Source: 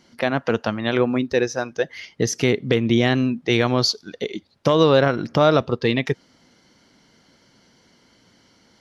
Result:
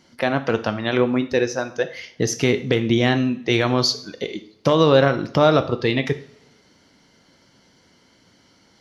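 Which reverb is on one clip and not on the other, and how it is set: two-slope reverb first 0.49 s, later 2 s, from -26 dB, DRR 8.5 dB

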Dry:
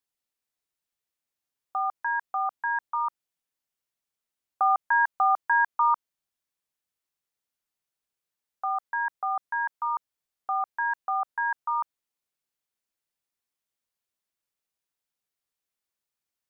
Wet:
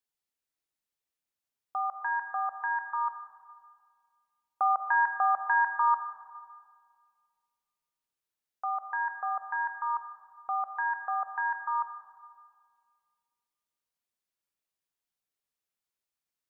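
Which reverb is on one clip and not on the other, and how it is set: algorithmic reverb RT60 2 s, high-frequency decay 0.45×, pre-delay 0 ms, DRR 8 dB; trim -3.5 dB

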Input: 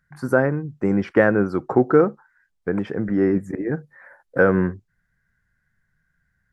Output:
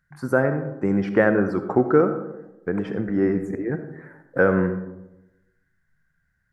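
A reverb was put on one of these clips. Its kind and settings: algorithmic reverb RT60 1 s, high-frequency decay 0.35×, pre-delay 25 ms, DRR 8.5 dB; trim -2 dB

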